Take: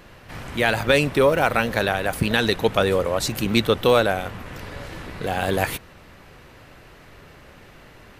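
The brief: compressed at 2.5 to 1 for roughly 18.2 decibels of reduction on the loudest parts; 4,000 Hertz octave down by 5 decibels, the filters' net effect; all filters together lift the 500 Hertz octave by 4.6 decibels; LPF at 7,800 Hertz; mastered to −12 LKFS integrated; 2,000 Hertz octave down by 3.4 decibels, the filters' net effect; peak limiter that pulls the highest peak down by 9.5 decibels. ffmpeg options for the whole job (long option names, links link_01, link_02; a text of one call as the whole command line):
ffmpeg -i in.wav -af "lowpass=7800,equalizer=frequency=500:width_type=o:gain=5.5,equalizer=frequency=2000:width_type=o:gain=-4,equalizer=frequency=4000:width_type=o:gain=-4.5,acompressor=threshold=-38dB:ratio=2.5,volume=27.5dB,alimiter=limit=0dB:level=0:latency=1" out.wav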